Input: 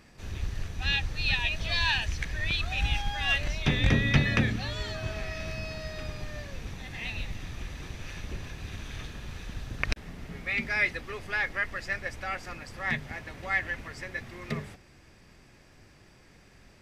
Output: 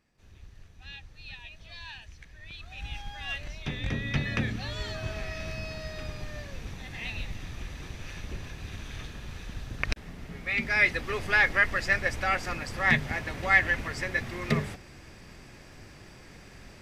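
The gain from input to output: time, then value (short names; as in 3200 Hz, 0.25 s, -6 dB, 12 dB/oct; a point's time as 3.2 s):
2.41 s -17 dB
3.03 s -8.5 dB
3.87 s -8.5 dB
4.82 s -0.5 dB
10.39 s -0.5 dB
11.18 s +7 dB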